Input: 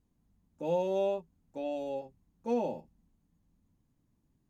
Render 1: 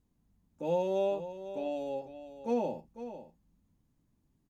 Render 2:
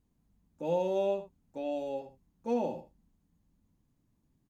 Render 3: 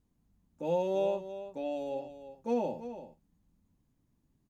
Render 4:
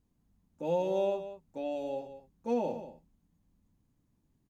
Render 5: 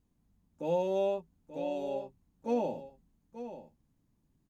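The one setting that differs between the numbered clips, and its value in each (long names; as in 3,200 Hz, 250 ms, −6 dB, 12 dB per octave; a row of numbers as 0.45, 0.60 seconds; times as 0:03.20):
single-tap delay, delay time: 500, 76, 335, 185, 884 milliseconds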